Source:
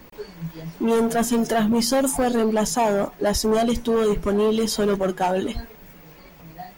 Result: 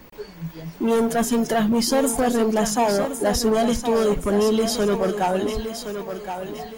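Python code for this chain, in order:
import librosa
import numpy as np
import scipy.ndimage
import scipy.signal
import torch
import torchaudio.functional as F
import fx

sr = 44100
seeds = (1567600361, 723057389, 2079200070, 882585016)

y = fx.echo_thinned(x, sr, ms=1069, feedback_pct=40, hz=200.0, wet_db=-8)
y = fx.quant_companded(y, sr, bits=8, at=(0.63, 1.37))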